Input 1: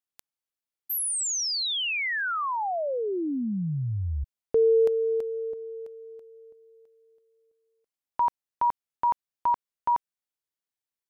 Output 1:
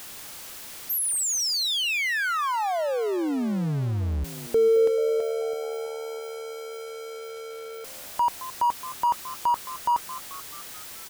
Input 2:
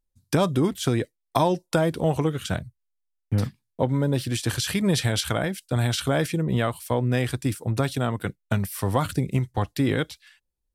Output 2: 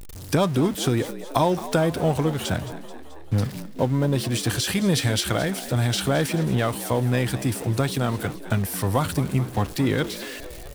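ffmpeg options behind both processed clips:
-filter_complex "[0:a]aeval=exprs='val(0)+0.5*0.0251*sgn(val(0))':c=same,asplit=2[s0][s1];[s1]asplit=6[s2][s3][s4][s5][s6][s7];[s2]adelay=217,afreqshift=75,volume=0.178[s8];[s3]adelay=434,afreqshift=150,volume=0.107[s9];[s4]adelay=651,afreqshift=225,volume=0.0638[s10];[s5]adelay=868,afreqshift=300,volume=0.0385[s11];[s6]adelay=1085,afreqshift=375,volume=0.0232[s12];[s7]adelay=1302,afreqshift=450,volume=0.0138[s13];[s8][s9][s10][s11][s12][s13]amix=inputs=6:normalize=0[s14];[s0][s14]amix=inputs=2:normalize=0"

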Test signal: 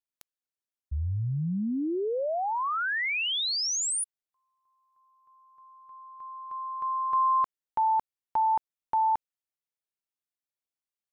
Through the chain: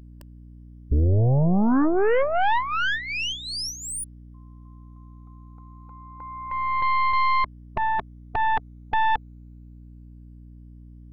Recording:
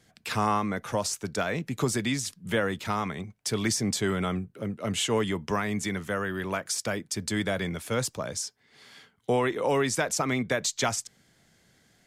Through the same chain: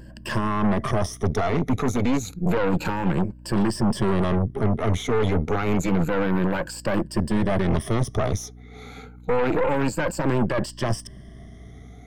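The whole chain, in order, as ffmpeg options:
-af "afftfilt=real='re*pow(10,19/40*sin(2*PI*(1.3*log(max(b,1)*sr/1024/100)/log(2)-(0.29)*(pts-256)/sr)))':imag='im*pow(10,19/40*sin(2*PI*(1.3*log(max(b,1)*sr/1024/100)/log(2)-(0.29)*(pts-256)/sr)))':win_size=1024:overlap=0.75,lowshelf=f=62:g=7,areverse,acompressor=threshold=0.0316:ratio=6:attack=31:release=40:knee=1:detection=rms,areverse,alimiter=level_in=1.12:limit=0.0631:level=0:latency=1:release=45,volume=0.891,acontrast=29,tiltshelf=f=1400:g=8.5,aeval=exprs='val(0)+0.00631*(sin(2*PI*60*n/s)+sin(2*PI*2*60*n/s)/2+sin(2*PI*3*60*n/s)/3+sin(2*PI*4*60*n/s)/4+sin(2*PI*5*60*n/s)/5)':c=same,aeval=exprs='0.282*(cos(1*acos(clip(val(0)/0.282,-1,1)))-cos(1*PI/2))+0.0316*(cos(5*acos(clip(val(0)/0.282,-1,1)))-cos(5*PI/2))+0.0631*(cos(6*acos(clip(val(0)/0.282,-1,1)))-cos(6*PI/2))':c=same,volume=0.708"

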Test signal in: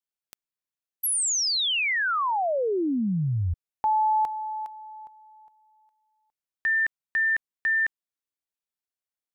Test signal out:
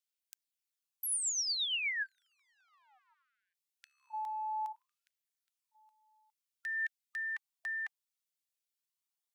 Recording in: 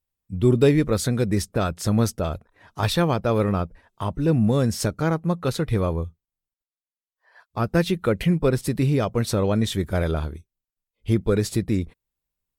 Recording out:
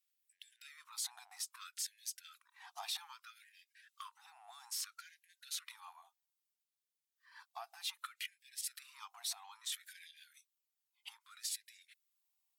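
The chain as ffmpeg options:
-filter_complex "[0:a]equalizer=f=1500:w=1.2:g=-9,asplit=2[s0][s1];[s1]asoftclip=type=hard:threshold=0.158,volume=0.355[s2];[s0][s2]amix=inputs=2:normalize=0,acompressor=threshold=0.0224:ratio=10:attack=0.3:release=35:knee=6:detection=peak,aphaser=in_gain=1:out_gain=1:delay=2.6:decay=0.28:speed=0.2:type=sinusoidal,asubboost=boost=2.5:cutoff=160,acrossover=split=240[s3][s4];[s3]asoftclip=type=tanh:threshold=0.0168[s5];[s5][s4]amix=inputs=2:normalize=0,afftfilt=real='re*gte(b*sr/1024,670*pow(1600/670,0.5+0.5*sin(2*PI*0.62*pts/sr)))':imag='im*gte(b*sr/1024,670*pow(1600/670,0.5+0.5*sin(2*PI*0.62*pts/sr)))':win_size=1024:overlap=0.75"

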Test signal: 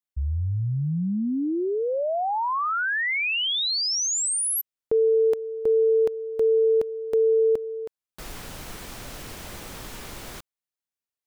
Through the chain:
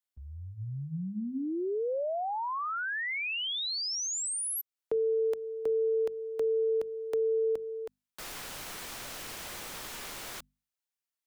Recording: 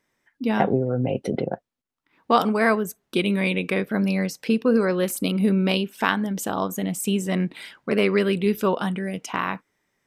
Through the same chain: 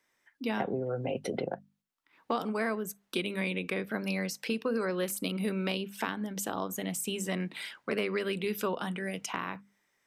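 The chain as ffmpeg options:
-filter_complex "[0:a]lowshelf=f=490:g=-10,acrossover=split=100|450[s0][s1][s2];[s0]acompressor=threshold=0.002:ratio=4[s3];[s1]acompressor=threshold=0.0282:ratio=4[s4];[s2]acompressor=threshold=0.02:ratio=4[s5];[s3][s4][s5]amix=inputs=3:normalize=0,bandreject=f=50:t=h:w=6,bandreject=f=100:t=h:w=6,bandreject=f=150:t=h:w=6,bandreject=f=200:t=h:w=6,bandreject=f=250:t=h:w=6"

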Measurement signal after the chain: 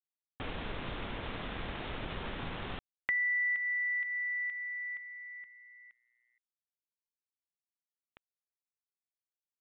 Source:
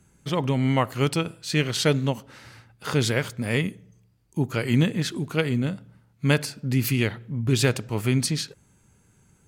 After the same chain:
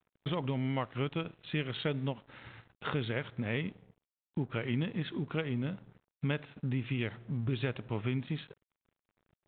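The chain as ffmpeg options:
-af "acompressor=threshold=0.0224:ratio=3,aresample=8000,aeval=exprs='sgn(val(0))*max(abs(val(0))-0.002,0)':c=same,aresample=44100"

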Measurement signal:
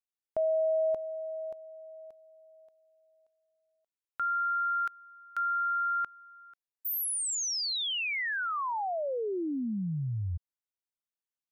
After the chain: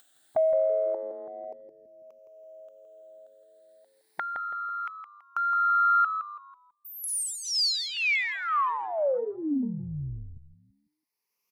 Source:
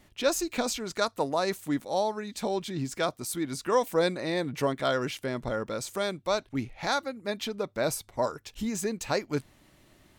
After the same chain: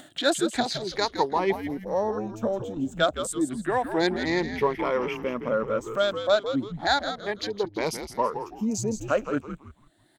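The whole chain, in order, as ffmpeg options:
-filter_complex "[0:a]afftfilt=real='re*pow(10,14/40*sin(2*PI*(0.83*log(max(b,1)*sr/1024/100)/log(2)-(0.31)*(pts-256)/sr)))':imag='im*pow(10,14/40*sin(2*PI*(0.83*log(max(b,1)*sr/1024/100)/log(2)-(0.31)*(pts-256)/sr)))':win_size=1024:overlap=0.75,afwtdn=0.0126,acrossover=split=9300[s0][s1];[s1]acompressor=threshold=0.00282:ratio=4:attack=1:release=60[s2];[s0][s2]amix=inputs=2:normalize=0,highpass=210,acompressor=mode=upward:threshold=0.0224:ratio=2.5:attack=22:release=914:knee=2.83:detection=peak,asplit=5[s3][s4][s5][s6][s7];[s4]adelay=165,afreqshift=-100,volume=0.355[s8];[s5]adelay=330,afreqshift=-200,volume=0.11[s9];[s6]adelay=495,afreqshift=-300,volume=0.0343[s10];[s7]adelay=660,afreqshift=-400,volume=0.0106[s11];[s3][s8][s9][s10][s11]amix=inputs=5:normalize=0,volume=1.19"

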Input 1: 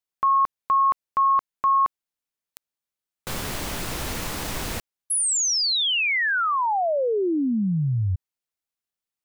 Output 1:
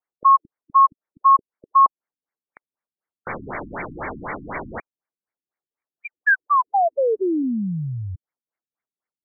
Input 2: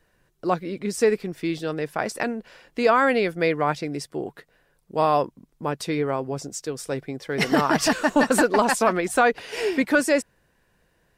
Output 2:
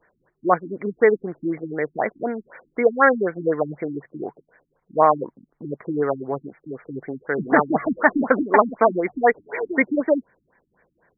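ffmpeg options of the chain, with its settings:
-af "aemphasis=mode=production:type=riaa,afftfilt=real='re*lt(b*sr/1024,300*pow(2400/300,0.5+0.5*sin(2*PI*4*pts/sr)))':imag='im*lt(b*sr/1024,300*pow(2400/300,0.5+0.5*sin(2*PI*4*pts/sr)))':win_size=1024:overlap=0.75,volume=2.24"

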